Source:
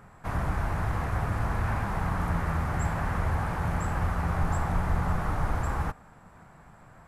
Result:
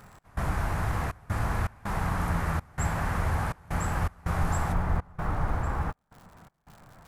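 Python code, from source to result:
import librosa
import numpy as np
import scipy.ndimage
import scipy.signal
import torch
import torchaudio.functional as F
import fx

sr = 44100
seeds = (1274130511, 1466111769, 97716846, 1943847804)

y = fx.high_shelf(x, sr, hz=3300.0, db=fx.steps((0.0, 6.5), (4.72, -7.0)))
y = fx.dmg_crackle(y, sr, seeds[0], per_s=170.0, level_db=-44.0)
y = fx.step_gate(y, sr, bpm=81, pattern='x.xxxx.xx.xxx', floor_db=-24.0, edge_ms=4.5)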